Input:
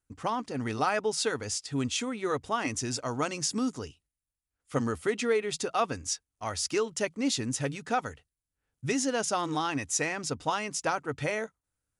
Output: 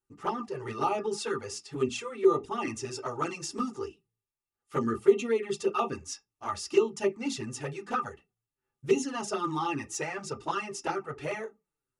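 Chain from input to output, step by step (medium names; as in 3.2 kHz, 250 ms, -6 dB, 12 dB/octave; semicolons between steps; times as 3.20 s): small resonant body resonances 390/840/1200/2700 Hz, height 15 dB, ringing for 80 ms; on a send at -2 dB: reverberation RT60 0.20 s, pre-delay 3 ms; on the sum: touch-sensitive flanger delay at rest 8.4 ms, full sweep at -16 dBFS; trim -4.5 dB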